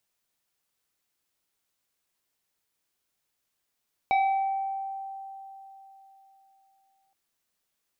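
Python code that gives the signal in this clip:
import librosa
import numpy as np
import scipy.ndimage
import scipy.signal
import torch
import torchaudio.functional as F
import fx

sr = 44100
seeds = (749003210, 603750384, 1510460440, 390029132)

y = fx.fm2(sr, length_s=3.02, level_db=-19, carrier_hz=779.0, ratio=1.95, index=0.78, index_s=1.36, decay_s=3.6, shape='exponential')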